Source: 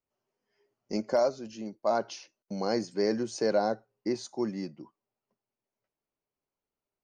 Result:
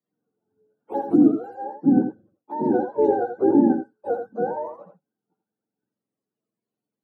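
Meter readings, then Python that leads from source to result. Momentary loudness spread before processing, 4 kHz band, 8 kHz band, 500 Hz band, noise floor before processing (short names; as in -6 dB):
13 LU, under -25 dB, under -25 dB, +5.0 dB, under -85 dBFS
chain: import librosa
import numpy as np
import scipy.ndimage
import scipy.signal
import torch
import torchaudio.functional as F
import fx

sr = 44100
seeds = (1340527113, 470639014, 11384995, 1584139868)

y = fx.octave_mirror(x, sr, pivot_hz=420.0)
y = scipy.signal.sosfilt(scipy.signal.butter(4, 170.0, 'highpass', fs=sr, output='sos'), y)
y = fx.dynamic_eq(y, sr, hz=270.0, q=1.3, threshold_db=-40.0, ratio=4.0, max_db=4)
y = y + 10.0 ** (-7.5 / 20.0) * np.pad(y, (int(84 * sr / 1000.0), 0))[:len(y)]
y = y * 10.0 ** (7.5 / 20.0)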